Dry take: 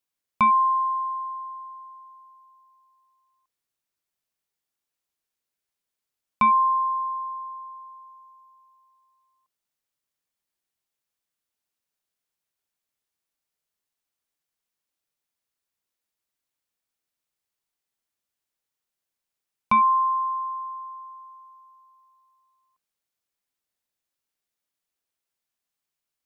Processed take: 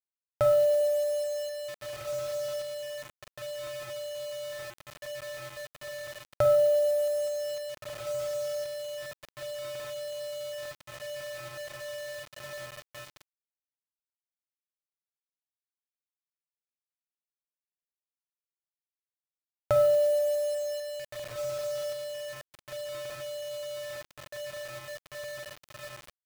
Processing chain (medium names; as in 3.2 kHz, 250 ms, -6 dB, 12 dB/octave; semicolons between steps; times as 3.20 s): median filter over 9 samples; gate -53 dBFS, range -17 dB; in parallel at -1.5 dB: compression 8:1, threshold -28 dBFS, peak gain reduction 12 dB; on the sum: bass shelf 110 Hz -2 dB; on a send: echo that smears into a reverb 1735 ms, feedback 61%, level -9.5 dB; on the sum: dynamic bell 520 Hz, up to -5 dB, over -40 dBFS, Q 0.73; Schroeder reverb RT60 0.54 s, combs from 31 ms, DRR 5.5 dB; pitch shift -10 st; time-frequency box 20.49–21.36 s, 1.2–3.1 kHz -12 dB; bit crusher 6-bit; trim -5.5 dB